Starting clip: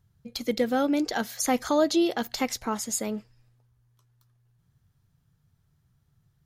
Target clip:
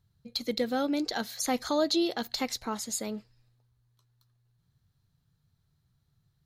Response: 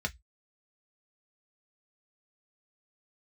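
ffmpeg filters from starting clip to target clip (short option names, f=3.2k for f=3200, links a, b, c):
-af "equalizer=f=4.1k:w=4.1:g=10,volume=-4.5dB"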